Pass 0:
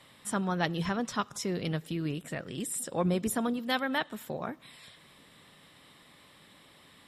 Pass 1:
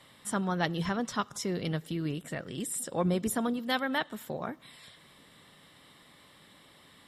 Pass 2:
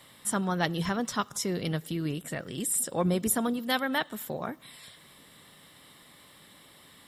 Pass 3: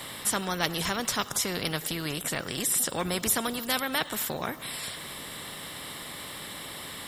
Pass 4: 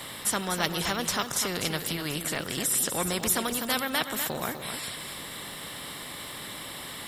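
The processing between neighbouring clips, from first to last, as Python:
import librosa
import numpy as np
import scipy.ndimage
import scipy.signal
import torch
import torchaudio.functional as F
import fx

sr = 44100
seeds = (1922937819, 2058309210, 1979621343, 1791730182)

y1 = fx.notch(x, sr, hz=2500.0, q=14.0)
y2 = fx.high_shelf(y1, sr, hz=9400.0, db=12.0)
y2 = y2 * librosa.db_to_amplitude(1.5)
y3 = fx.spectral_comp(y2, sr, ratio=2.0)
y3 = y3 * librosa.db_to_amplitude(4.0)
y4 = y3 + 10.0 ** (-8.0 / 20.0) * np.pad(y3, (int(249 * sr / 1000.0), 0))[:len(y3)]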